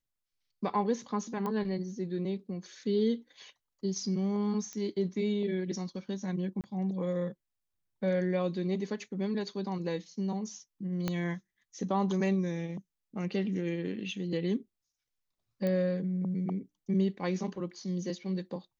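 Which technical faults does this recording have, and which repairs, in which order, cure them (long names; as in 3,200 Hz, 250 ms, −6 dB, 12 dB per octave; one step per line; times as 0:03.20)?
0:01.46: click −23 dBFS
0:04.73: click −27 dBFS
0:06.61–0:06.64: drop-out 28 ms
0:11.08: click −17 dBFS
0:15.67: click −21 dBFS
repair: click removal
repair the gap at 0:06.61, 28 ms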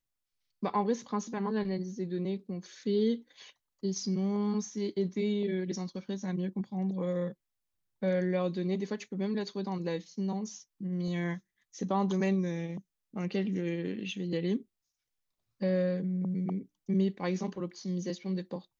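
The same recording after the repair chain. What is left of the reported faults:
0:11.08: click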